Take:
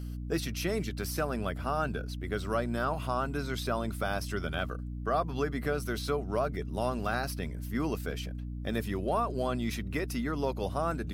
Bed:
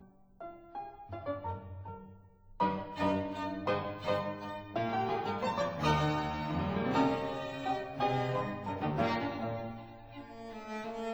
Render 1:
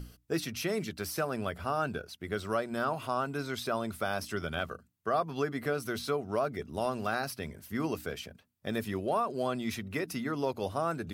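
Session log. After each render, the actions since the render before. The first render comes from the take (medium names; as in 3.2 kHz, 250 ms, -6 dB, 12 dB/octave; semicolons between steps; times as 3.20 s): hum notches 60/120/180/240/300 Hz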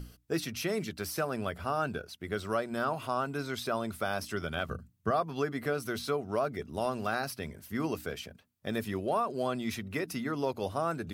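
4.69–5.11 s: tone controls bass +14 dB, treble +1 dB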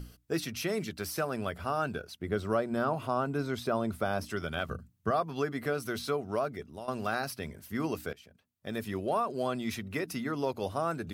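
2.19–4.30 s: tilt shelf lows +4.5 dB, about 1.1 kHz; 6.20–6.88 s: fade out equal-power, to -14.5 dB; 8.13–9.02 s: fade in, from -17 dB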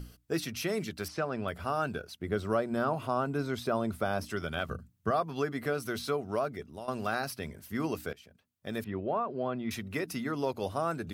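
1.08–1.48 s: distance through air 120 m; 8.84–9.71 s: distance through air 430 m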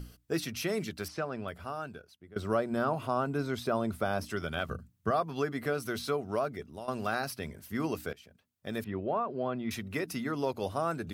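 0.88–2.36 s: fade out, to -22.5 dB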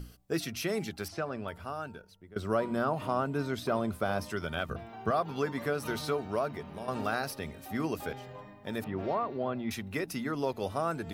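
add bed -13 dB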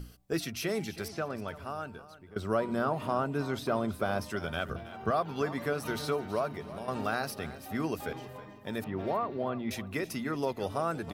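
feedback delay 323 ms, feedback 28%, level -15.5 dB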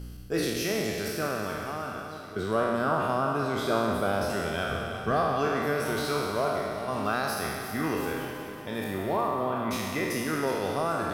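spectral sustain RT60 1.70 s; on a send: multi-head delay 184 ms, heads first and second, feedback 56%, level -14 dB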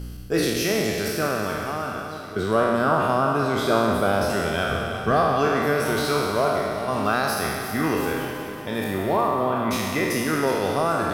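trim +6 dB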